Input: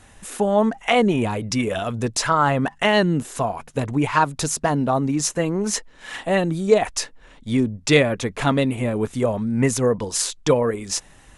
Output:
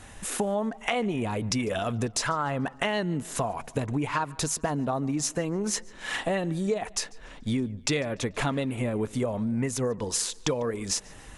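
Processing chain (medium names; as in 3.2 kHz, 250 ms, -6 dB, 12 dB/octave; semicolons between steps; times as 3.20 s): compression 6:1, threshold -28 dBFS, peak gain reduction 17.5 dB; on a send: tape echo 146 ms, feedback 56%, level -22 dB, low-pass 4.7 kHz; on the sum: trim +2.5 dB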